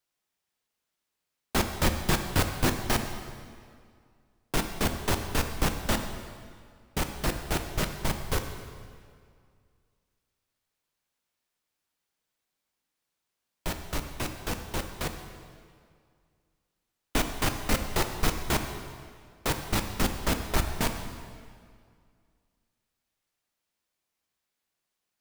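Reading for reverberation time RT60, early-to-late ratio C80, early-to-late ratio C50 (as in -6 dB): 2.1 s, 8.5 dB, 7.0 dB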